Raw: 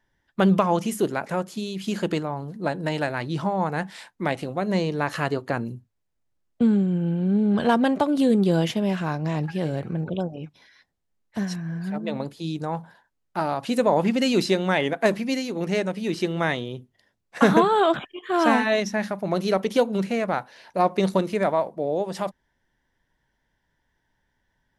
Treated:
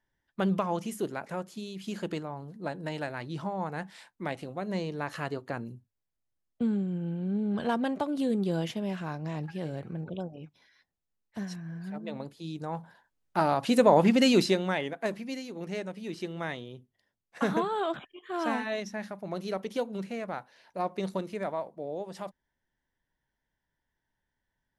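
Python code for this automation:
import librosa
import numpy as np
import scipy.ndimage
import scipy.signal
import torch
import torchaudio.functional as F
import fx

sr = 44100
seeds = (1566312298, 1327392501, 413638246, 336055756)

y = fx.gain(x, sr, db=fx.line((12.47, -9.0), (13.4, 0.0), (14.3, 0.0), (14.93, -11.0)))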